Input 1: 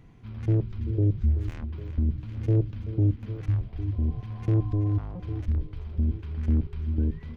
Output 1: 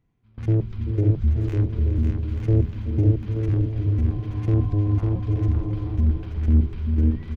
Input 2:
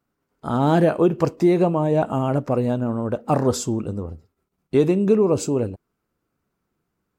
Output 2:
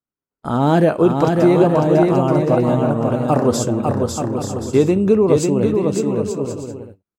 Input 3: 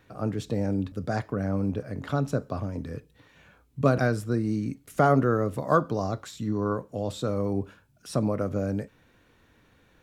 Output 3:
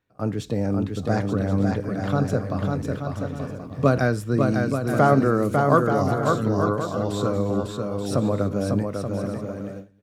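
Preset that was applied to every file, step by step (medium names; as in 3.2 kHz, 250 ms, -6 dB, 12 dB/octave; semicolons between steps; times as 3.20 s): bouncing-ball echo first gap 550 ms, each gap 0.6×, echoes 5; gate with hold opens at -30 dBFS; trim +3 dB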